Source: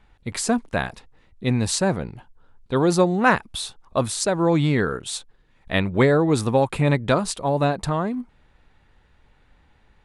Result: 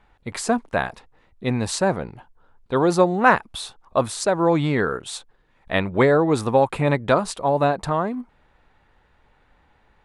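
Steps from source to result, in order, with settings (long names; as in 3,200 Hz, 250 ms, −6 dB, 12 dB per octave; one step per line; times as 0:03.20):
parametric band 860 Hz +7.5 dB 2.8 octaves
level −4 dB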